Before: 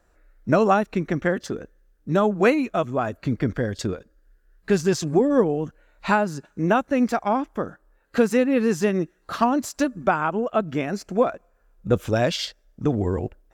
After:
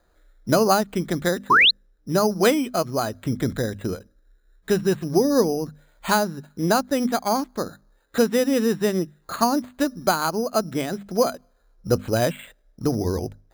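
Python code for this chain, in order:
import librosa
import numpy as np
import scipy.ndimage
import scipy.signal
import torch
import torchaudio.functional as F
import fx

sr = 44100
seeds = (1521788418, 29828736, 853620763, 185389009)

y = np.repeat(scipy.signal.resample_poly(x, 1, 8), 8)[:len(x)]
y = fx.spec_paint(y, sr, seeds[0], shape='rise', start_s=1.5, length_s=0.21, low_hz=920.0, high_hz=4400.0, level_db=-14.0)
y = fx.hum_notches(y, sr, base_hz=50, count=5)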